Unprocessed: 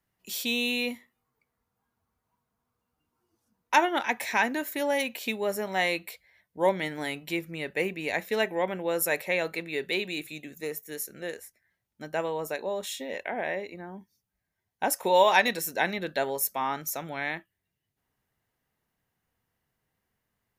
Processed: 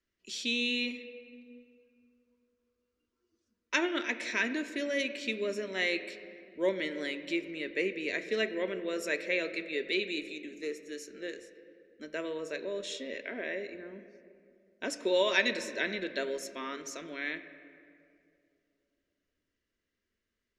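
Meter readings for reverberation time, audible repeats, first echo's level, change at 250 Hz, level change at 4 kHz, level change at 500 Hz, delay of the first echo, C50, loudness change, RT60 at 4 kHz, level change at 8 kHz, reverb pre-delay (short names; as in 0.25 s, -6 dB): 2.5 s, none, none, -2.0 dB, -2.0 dB, -4.5 dB, none, 11.5 dB, -4.5 dB, 1.4 s, -8.5 dB, 3 ms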